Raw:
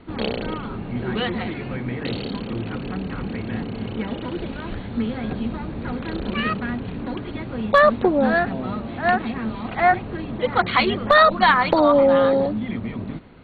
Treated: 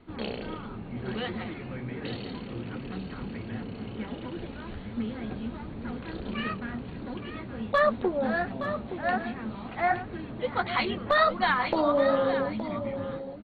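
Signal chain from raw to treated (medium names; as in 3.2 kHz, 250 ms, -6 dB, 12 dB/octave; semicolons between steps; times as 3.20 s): flange 1.4 Hz, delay 7.6 ms, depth 8.9 ms, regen -44%; delay 869 ms -10.5 dB; trim -5 dB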